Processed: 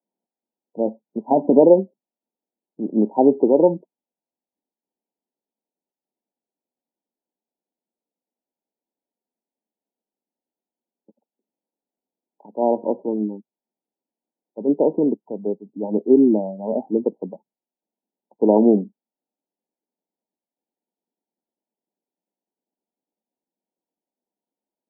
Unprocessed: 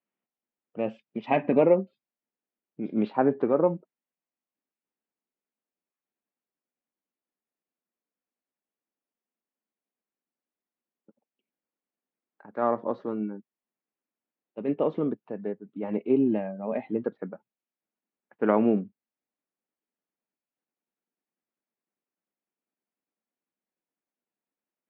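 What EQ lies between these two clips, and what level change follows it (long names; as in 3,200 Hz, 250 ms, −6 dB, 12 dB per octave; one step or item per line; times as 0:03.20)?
high-pass filter 170 Hz 24 dB per octave
dynamic equaliser 340 Hz, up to +5 dB, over −34 dBFS, Q 1.1
linear-phase brick-wall low-pass 1,000 Hz
+5.0 dB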